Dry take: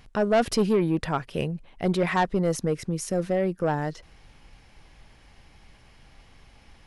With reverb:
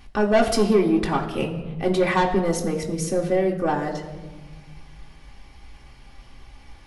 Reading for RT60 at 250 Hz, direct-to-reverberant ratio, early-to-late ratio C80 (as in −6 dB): 1.9 s, −2.0 dB, 11.5 dB